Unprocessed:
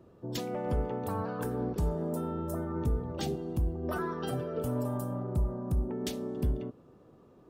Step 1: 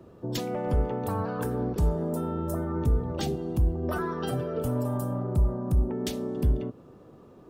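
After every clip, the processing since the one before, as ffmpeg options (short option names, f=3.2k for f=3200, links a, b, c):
-filter_complex "[0:a]acrossover=split=120[a][b];[b]acompressor=threshold=-39dB:ratio=1.5[c];[a][c]amix=inputs=2:normalize=0,volume=6.5dB"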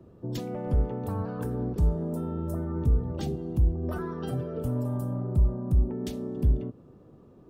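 -af "lowshelf=f=390:g=9.5,volume=-8dB"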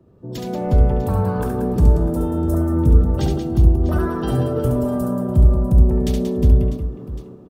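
-filter_complex "[0:a]dynaudnorm=f=110:g=7:m=12dB,asplit=2[a][b];[b]aecho=0:1:70|182|361.2|647.9|1107:0.631|0.398|0.251|0.158|0.1[c];[a][c]amix=inputs=2:normalize=0,volume=-2dB"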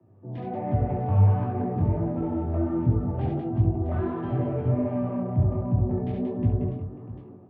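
-filter_complex "[0:a]acrossover=split=150|650[a][b][c];[c]asoftclip=type=hard:threshold=-34dB[d];[a][b][d]amix=inputs=3:normalize=0,flanger=delay=17:depth=6:speed=1.4,highpass=f=100:w=0.5412,highpass=f=100:w=1.3066,equalizer=f=100:t=q:w=4:g=10,equalizer=f=180:t=q:w=4:g=-5,equalizer=f=460:t=q:w=4:g=-7,equalizer=f=730:t=q:w=4:g=5,equalizer=f=1.4k:t=q:w=4:g=-5,lowpass=f=2.3k:w=0.5412,lowpass=f=2.3k:w=1.3066,volume=-2dB"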